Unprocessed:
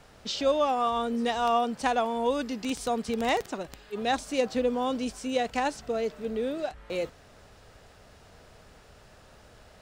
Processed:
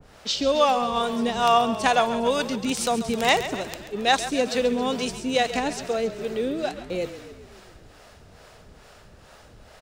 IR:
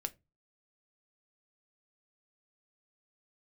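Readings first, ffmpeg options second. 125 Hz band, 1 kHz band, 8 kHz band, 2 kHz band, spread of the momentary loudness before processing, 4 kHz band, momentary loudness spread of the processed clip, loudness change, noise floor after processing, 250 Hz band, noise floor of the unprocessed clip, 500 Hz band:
+8.0 dB, +5.0 dB, +9.0 dB, +7.5 dB, 8 LU, +8.5 dB, 10 LU, +5.0 dB, −51 dBFS, +4.0 dB, −54 dBFS, +4.0 dB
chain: -filter_complex "[0:a]acrossover=split=430[link_01][link_02];[link_01]aeval=exprs='val(0)*(1-0.7/2+0.7/2*cos(2*PI*2.3*n/s))':channel_layout=same[link_03];[link_02]aeval=exprs='val(0)*(1-0.7/2-0.7/2*cos(2*PI*2.3*n/s))':channel_layout=same[link_04];[link_03][link_04]amix=inputs=2:normalize=0,asplit=2[link_05][link_06];[link_06]asplit=7[link_07][link_08][link_09][link_10][link_11][link_12][link_13];[link_07]adelay=136,afreqshift=-33,volume=-12.5dB[link_14];[link_08]adelay=272,afreqshift=-66,volume=-16.5dB[link_15];[link_09]adelay=408,afreqshift=-99,volume=-20.5dB[link_16];[link_10]adelay=544,afreqshift=-132,volume=-24.5dB[link_17];[link_11]adelay=680,afreqshift=-165,volume=-28.6dB[link_18];[link_12]adelay=816,afreqshift=-198,volume=-32.6dB[link_19];[link_13]adelay=952,afreqshift=-231,volume=-36.6dB[link_20];[link_14][link_15][link_16][link_17][link_18][link_19][link_20]amix=inputs=7:normalize=0[link_21];[link_05][link_21]amix=inputs=2:normalize=0,adynamicequalizer=threshold=0.00631:dfrequency=1800:dqfactor=0.7:tfrequency=1800:tqfactor=0.7:attack=5:release=100:ratio=0.375:range=2.5:mode=boostabove:tftype=highshelf,volume=7dB"

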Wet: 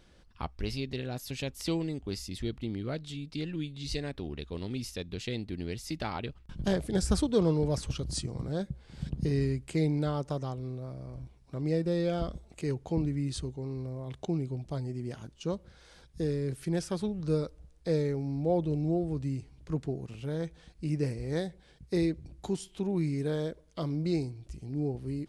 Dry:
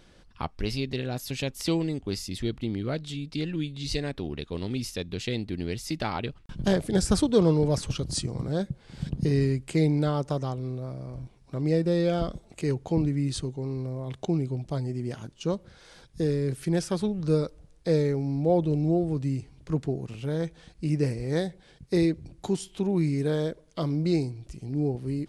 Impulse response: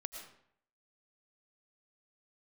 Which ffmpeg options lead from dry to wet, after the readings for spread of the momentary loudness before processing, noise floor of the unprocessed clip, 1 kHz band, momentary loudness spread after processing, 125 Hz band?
10 LU, −57 dBFS, −5.0 dB, 10 LU, −4.5 dB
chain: -af "equalizer=frequency=62:width_type=o:width=0.25:gain=13.5,volume=-5dB"

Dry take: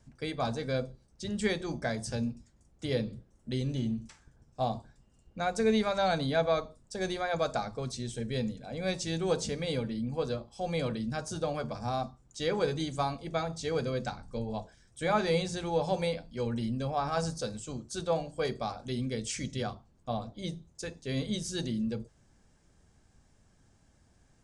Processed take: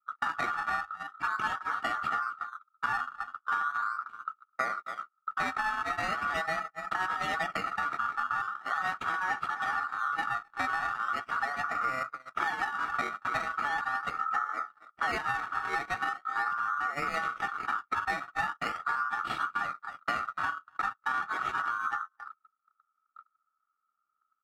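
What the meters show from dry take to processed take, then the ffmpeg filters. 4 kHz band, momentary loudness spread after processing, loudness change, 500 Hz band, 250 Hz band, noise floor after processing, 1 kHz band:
−5.0 dB, 5 LU, +1.0 dB, −13.0 dB, −15.0 dB, −81 dBFS, +7.0 dB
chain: -filter_complex "[0:a]asplit=2[link_01][link_02];[link_02]adelay=262.4,volume=-14dB,highshelf=frequency=4000:gain=-5.9[link_03];[link_01][link_03]amix=inputs=2:normalize=0,adynamicequalizer=threshold=0.00631:dfrequency=290:dqfactor=1.2:tfrequency=290:tqfactor=1.2:attack=5:release=100:ratio=0.375:range=3:mode=cutabove:tftype=bell,acrusher=samples=17:mix=1:aa=0.000001:lfo=1:lforange=17:lforate=0.4,acontrast=50,aemphasis=mode=reproduction:type=bsi,aecho=1:1:2:0.56,aeval=exprs='val(0)*sin(2*PI*1300*n/s)':channel_layout=same,acompressor=threshold=-31dB:ratio=16,agate=range=-39dB:threshold=-36dB:ratio=16:detection=peak,volume=4dB"

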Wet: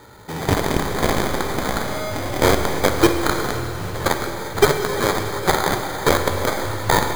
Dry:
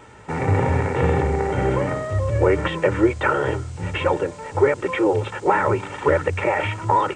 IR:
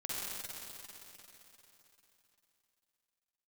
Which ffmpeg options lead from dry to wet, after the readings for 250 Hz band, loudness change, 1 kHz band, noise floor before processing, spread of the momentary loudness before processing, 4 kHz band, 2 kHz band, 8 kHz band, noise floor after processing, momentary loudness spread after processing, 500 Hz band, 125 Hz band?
+1.0 dB, +0.5 dB, +0.5 dB, −39 dBFS, 5 LU, +11.0 dB, +2.0 dB, +16.0 dB, −29 dBFS, 8 LU, −1.0 dB, −3.0 dB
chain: -filter_complex "[0:a]acrusher=samples=16:mix=1:aa=0.000001,aeval=exprs='0.596*(cos(1*acos(clip(val(0)/0.596,-1,1)))-cos(1*PI/2))+0.119*(cos(2*acos(clip(val(0)/0.596,-1,1)))-cos(2*PI/2))+0.168*(cos(7*acos(clip(val(0)/0.596,-1,1)))-cos(7*PI/2))':channel_layout=same,asplit=2[link_01][link_02];[1:a]atrim=start_sample=2205[link_03];[link_02][link_03]afir=irnorm=-1:irlink=0,volume=-5.5dB[link_04];[link_01][link_04]amix=inputs=2:normalize=0,volume=-1.5dB"

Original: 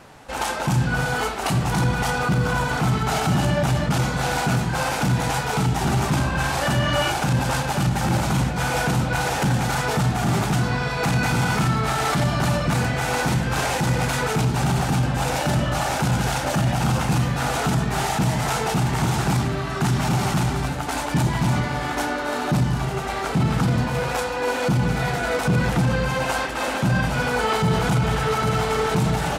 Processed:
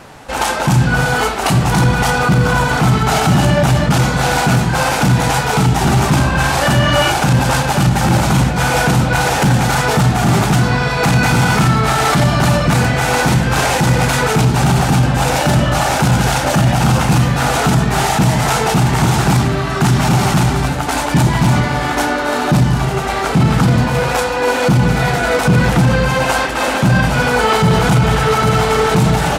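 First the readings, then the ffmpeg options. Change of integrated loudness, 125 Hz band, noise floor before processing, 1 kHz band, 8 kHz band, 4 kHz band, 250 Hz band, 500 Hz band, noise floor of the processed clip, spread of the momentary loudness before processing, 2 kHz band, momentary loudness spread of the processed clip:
+8.5 dB, +8.5 dB, −27 dBFS, +8.5 dB, +8.5 dB, +8.5 dB, +8.5 dB, +8.5 dB, −18 dBFS, 3 LU, +8.5 dB, 3 LU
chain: -af "aeval=exprs='0.237*(abs(mod(val(0)/0.237+3,4)-2)-1)':channel_layout=same,volume=8.5dB"

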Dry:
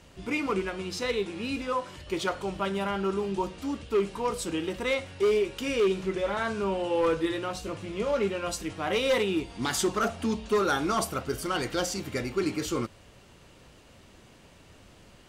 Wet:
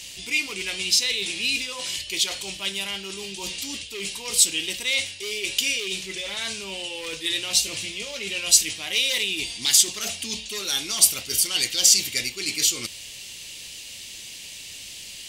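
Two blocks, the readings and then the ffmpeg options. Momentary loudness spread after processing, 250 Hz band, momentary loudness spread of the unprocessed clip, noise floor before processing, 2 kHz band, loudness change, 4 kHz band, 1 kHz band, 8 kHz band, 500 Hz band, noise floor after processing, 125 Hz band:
19 LU, −9.5 dB, 7 LU, −55 dBFS, +6.0 dB, +7.0 dB, +15.0 dB, −11.0 dB, +18.5 dB, −11.0 dB, −40 dBFS, −8.0 dB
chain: -af "areverse,acompressor=threshold=-34dB:ratio=6,areverse,aexciter=amount=14.2:drive=5.4:freq=2100,volume=-2dB"

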